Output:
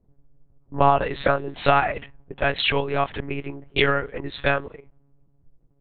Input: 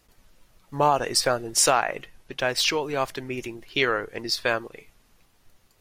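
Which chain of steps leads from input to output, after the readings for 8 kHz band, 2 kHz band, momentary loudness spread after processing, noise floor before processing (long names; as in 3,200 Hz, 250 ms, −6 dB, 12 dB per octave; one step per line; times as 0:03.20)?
below −40 dB, +2.5 dB, 13 LU, −63 dBFS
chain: low-pass that shuts in the quiet parts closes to 310 Hz, open at −21.5 dBFS
one-pitch LPC vocoder at 8 kHz 140 Hz
level +3.5 dB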